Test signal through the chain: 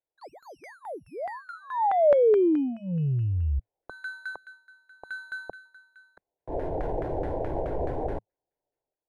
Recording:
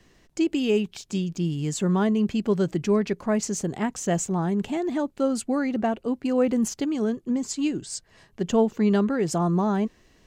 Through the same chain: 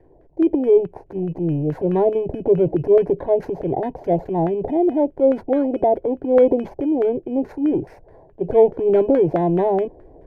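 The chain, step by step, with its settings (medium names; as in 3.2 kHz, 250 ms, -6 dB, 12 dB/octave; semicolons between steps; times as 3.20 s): bit-reversed sample order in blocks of 16 samples; FFT filter 110 Hz 0 dB, 190 Hz +8 dB, 1.2 kHz -1 dB, 4.9 kHz -11 dB, 10 kHz -5 dB; transient shaper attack -5 dB, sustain +7 dB; static phaser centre 510 Hz, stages 4; LFO low-pass saw down 4.7 Hz 650–1600 Hz; trim +6.5 dB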